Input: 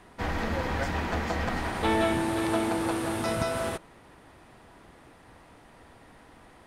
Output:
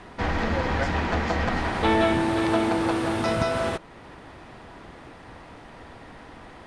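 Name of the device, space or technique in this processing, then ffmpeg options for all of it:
parallel compression: -filter_complex "[0:a]asplit=2[a][b];[b]acompressor=threshold=-44dB:ratio=6,volume=-1.5dB[c];[a][c]amix=inputs=2:normalize=0,lowpass=6.1k,volume=3.5dB"

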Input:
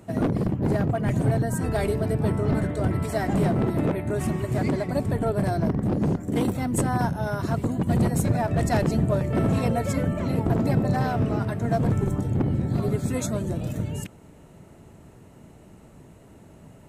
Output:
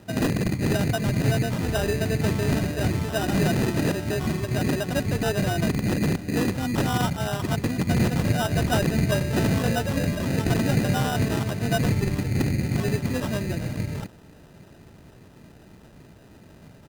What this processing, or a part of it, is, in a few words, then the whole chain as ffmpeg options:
crushed at another speed: -af "asetrate=35280,aresample=44100,acrusher=samples=25:mix=1:aa=0.000001,asetrate=55125,aresample=44100"

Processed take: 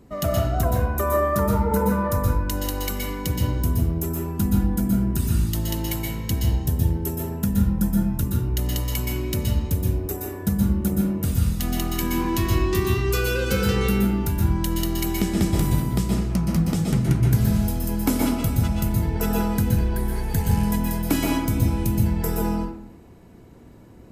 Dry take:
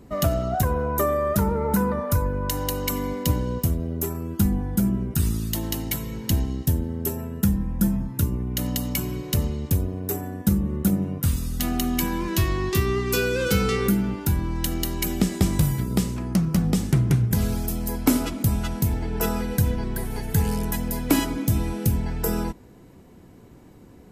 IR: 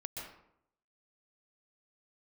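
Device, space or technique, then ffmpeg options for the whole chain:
bathroom: -filter_complex "[1:a]atrim=start_sample=2205[a];[0:a][a]afir=irnorm=-1:irlink=0,volume=1.5dB"

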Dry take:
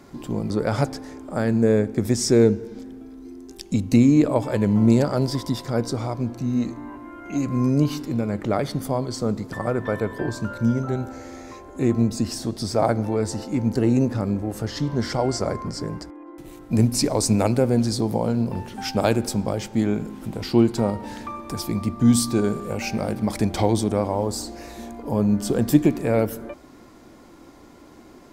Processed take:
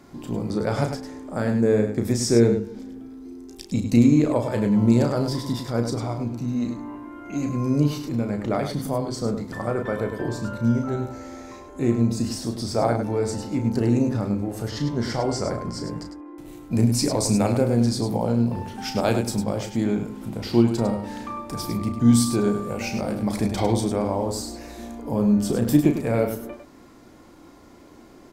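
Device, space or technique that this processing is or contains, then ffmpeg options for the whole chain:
slapback doubling: -filter_complex "[0:a]asplit=3[a][b][c];[b]adelay=34,volume=-7dB[d];[c]adelay=102,volume=-8dB[e];[a][d][e]amix=inputs=3:normalize=0,volume=-2.5dB"

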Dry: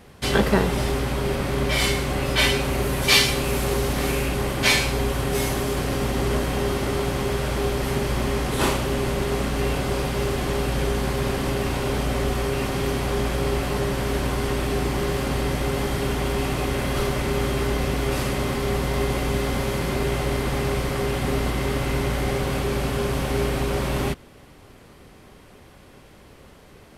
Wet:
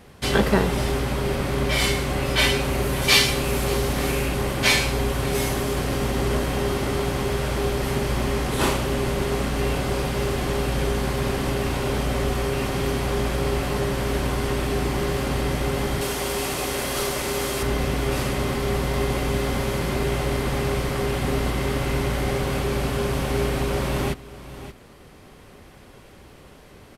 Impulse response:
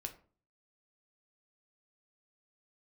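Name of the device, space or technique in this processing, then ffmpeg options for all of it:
ducked delay: -filter_complex "[0:a]asettb=1/sr,asplit=3[a][b][c];[a]atrim=end=16.014[d];[b]atrim=start=16.01:end=17.63,asetpts=PTS-STARTPTS,afade=t=in:d=0.004:c=qsin,afade=t=out:st=1.616:d=0.004:c=qsin,bass=f=250:g=-9,treble=f=4k:g=8[e];[c]atrim=start=17.626[f];[d][e]acrossfade=d=0.004:c1=hsin:c2=qsin[g];[g][f]acrossfade=d=0.004:c1=qsin:c2=hsin,asplit=3[h][i][j];[i]adelay=577,volume=-5dB[k];[j]apad=whole_len=1214991[l];[k][l]sidechaincompress=threshold=-34dB:ratio=12:attack=41:release=1250[m];[h][m]amix=inputs=2:normalize=0"

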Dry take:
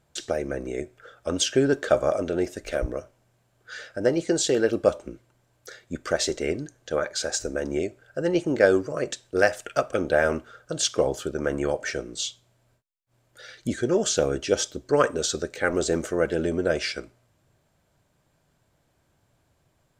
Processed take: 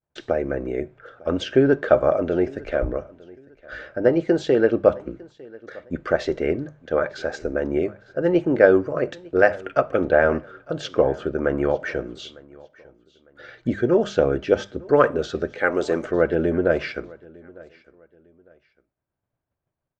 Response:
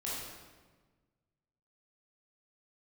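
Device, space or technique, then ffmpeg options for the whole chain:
hearing-loss simulation: -filter_complex "[0:a]acrossover=split=8600[a][b];[b]acompressor=threshold=-56dB:ratio=4:attack=1:release=60[c];[a][c]amix=inputs=2:normalize=0,asettb=1/sr,asplit=3[d][e][f];[d]atrim=end=15.584[g];[e]atrim=start=15.58:end=16.05,asetpts=PTS-STARTPTS,afade=t=in:d=0.004:c=qsin,afade=t=out:st=0.466:d=0.004:c=qsin,aemphasis=mode=production:type=bsi[h];[f]atrim=start=16.046[i];[g][h]acrossfade=d=0.004:c1=hsin:c2=qsin[j];[j][i]acrossfade=d=0.004:c1=qsin:c2=hsin,lowpass=2k,agate=range=-33dB:threshold=-54dB:ratio=3:detection=peak,bandreject=f=50:t=h:w=6,bandreject=f=100:t=h:w=6,bandreject=f=150:t=h:w=6,bandreject=f=200:t=h:w=6,aecho=1:1:903|1806:0.0668|0.0201,volume=4.5dB"

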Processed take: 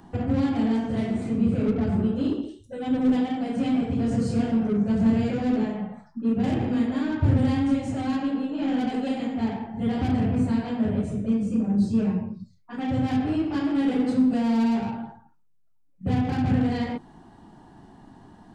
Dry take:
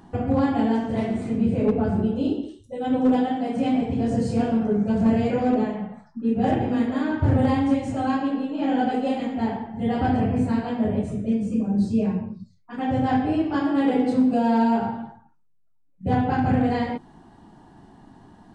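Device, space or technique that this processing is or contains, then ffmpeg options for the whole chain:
one-band saturation: -filter_complex "[0:a]acrossover=split=350|2400[a][b][c];[b]asoftclip=type=tanh:threshold=-34dB[d];[a][d][c]amix=inputs=3:normalize=0"

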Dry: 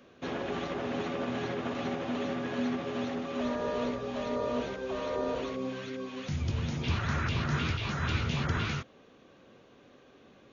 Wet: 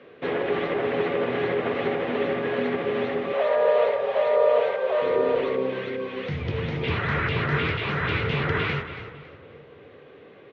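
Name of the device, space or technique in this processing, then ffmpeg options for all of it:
frequency-shifting delay pedal into a guitar cabinet: -filter_complex "[0:a]asplit=4[a][b][c][d];[b]adelay=278,afreqshift=-31,volume=-11.5dB[e];[c]adelay=556,afreqshift=-62,volume=-22dB[f];[d]adelay=834,afreqshift=-93,volume=-32.4dB[g];[a][e][f][g]amix=inputs=4:normalize=0,highpass=110,equalizer=f=230:t=q:w=4:g=-7,equalizer=f=450:t=q:w=4:g=10,equalizer=f=2k:t=q:w=4:g=7,lowpass=f=3.5k:w=0.5412,lowpass=f=3.5k:w=1.3066,asettb=1/sr,asplit=3[h][i][j];[h]atrim=end=3.334[k];[i]atrim=start=3.33:end=5.02,asetpts=PTS-STARTPTS,afade=t=in:d=0.004:c=qsin,afade=t=out:st=1.686:d=0.004:c=qsin,lowshelf=f=420:t=q:w=3:g=-12[l];[j]atrim=start=5.016[m];[k][l]acrossfade=d=0.004:c1=hsin:c2=qsin[n];[n][m]acrossfade=d=0.004:c1=qsin:c2=hsin,asplit=2[o][p];[p]adelay=422,lowpass=f=980:p=1,volume=-19dB,asplit=2[q][r];[r]adelay=422,lowpass=f=980:p=1,volume=0.49,asplit=2[s][t];[t]adelay=422,lowpass=f=980:p=1,volume=0.49,asplit=2[u][v];[v]adelay=422,lowpass=f=980:p=1,volume=0.49[w];[o][q][s][u][w]amix=inputs=5:normalize=0,volume=6dB"

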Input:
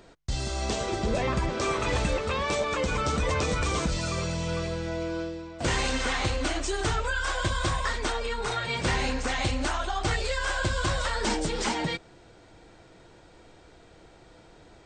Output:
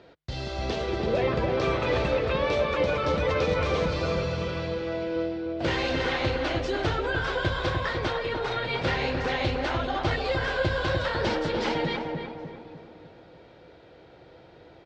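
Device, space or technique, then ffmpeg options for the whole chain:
frequency-shifting delay pedal into a guitar cabinet: -filter_complex "[0:a]asettb=1/sr,asplit=3[a][b][c];[a]atrim=end=4.434[d];[b]atrim=start=4.43:end=5.16,asetpts=PTS-STARTPTS,afade=t=in:d=0.004:c=qsin,afade=t=out:st=0.726:d=0.004:c=qsin,highpass=f=290:p=1[e];[c]atrim=start=5.156[f];[d][e]acrossfade=d=0.004:c1=hsin:c2=qsin[g];[g][f]acrossfade=d=0.004:c1=qsin:c2=hsin,asplit=4[h][i][j][k];[i]adelay=384,afreqshift=100,volume=-23dB[l];[j]adelay=768,afreqshift=200,volume=-30.3dB[m];[k]adelay=1152,afreqshift=300,volume=-37.7dB[n];[h][l][m][n]amix=inputs=4:normalize=0,highpass=78,equalizer=f=210:t=q:w=4:g=-4,equalizer=f=520:t=q:w=4:g=5,equalizer=f=1.1k:t=q:w=4:g=-3,lowpass=f=4.5k:w=0.5412,lowpass=f=4.5k:w=1.3066,asplit=2[o][p];[p]adelay=300,lowpass=f=1.3k:p=1,volume=-3dB,asplit=2[q][r];[r]adelay=300,lowpass=f=1.3k:p=1,volume=0.51,asplit=2[s][t];[t]adelay=300,lowpass=f=1.3k:p=1,volume=0.51,asplit=2[u][v];[v]adelay=300,lowpass=f=1.3k:p=1,volume=0.51,asplit=2[w][x];[x]adelay=300,lowpass=f=1.3k:p=1,volume=0.51,asplit=2[y][z];[z]adelay=300,lowpass=f=1.3k:p=1,volume=0.51,asplit=2[aa][ab];[ab]adelay=300,lowpass=f=1.3k:p=1,volume=0.51[ac];[o][q][s][u][w][y][aa][ac]amix=inputs=8:normalize=0"

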